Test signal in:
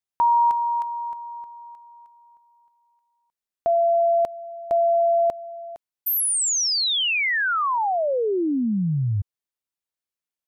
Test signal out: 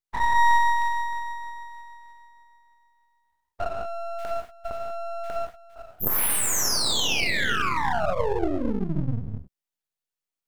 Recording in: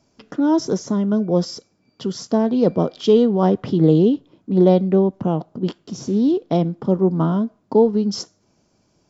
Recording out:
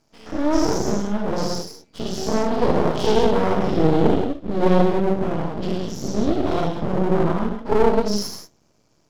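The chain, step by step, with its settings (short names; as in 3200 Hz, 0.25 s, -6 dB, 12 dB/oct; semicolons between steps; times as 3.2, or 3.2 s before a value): spectral dilation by 0.12 s; non-linear reverb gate 0.21 s flat, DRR 0.5 dB; half-wave rectifier; gain -4 dB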